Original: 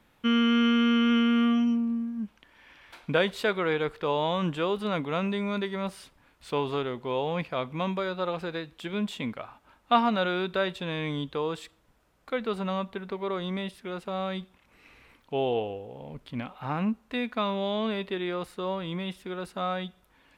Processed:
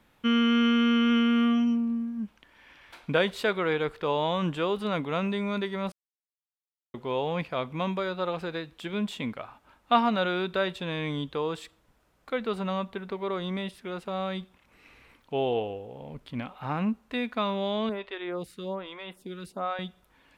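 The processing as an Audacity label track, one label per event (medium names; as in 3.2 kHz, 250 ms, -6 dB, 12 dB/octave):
5.920000	6.940000	mute
17.890000	19.790000	lamp-driven phase shifter 1.2 Hz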